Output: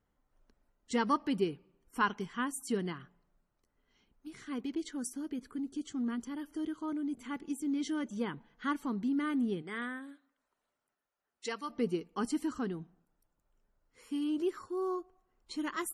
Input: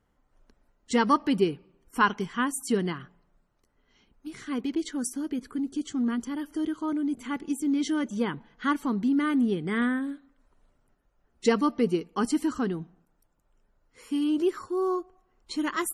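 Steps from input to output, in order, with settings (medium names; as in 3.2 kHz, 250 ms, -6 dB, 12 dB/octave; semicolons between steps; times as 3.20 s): 9.61–11.69 s: high-pass 550 Hz -> 1.4 kHz 6 dB/octave; trim -7.5 dB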